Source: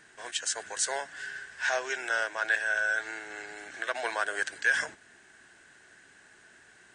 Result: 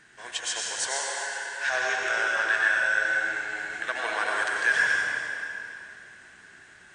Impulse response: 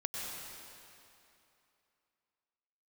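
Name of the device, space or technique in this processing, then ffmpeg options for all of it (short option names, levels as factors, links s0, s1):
swimming-pool hall: -filter_complex "[1:a]atrim=start_sample=2205[s0];[0:a][s0]afir=irnorm=-1:irlink=0,highshelf=f=5100:g=-6,asettb=1/sr,asplit=3[s1][s2][s3];[s1]atrim=end=0.874[s4];[s2]atrim=start=0.87:end=1.66,asetpts=PTS-STARTPTS,afade=t=in:d=0.004:c=qsin,afade=t=out:st=0.786:d=0.004:c=qsin,highpass=290[s5];[s3]atrim=start=1.656[s6];[s4][s5]acrossfade=d=0.004:c1=hsin:c2=qsin[s7];[s7][s6]acrossfade=d=0.004:c1=qsin:c2=hsin,equalizer=f=520:w=0.81:g=-5.5,volume=1.68"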